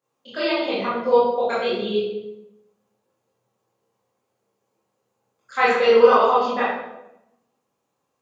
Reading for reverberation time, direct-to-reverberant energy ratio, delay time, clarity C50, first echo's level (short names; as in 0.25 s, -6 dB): 0.90 s, -9.5 dB, none, 1.0 dB, none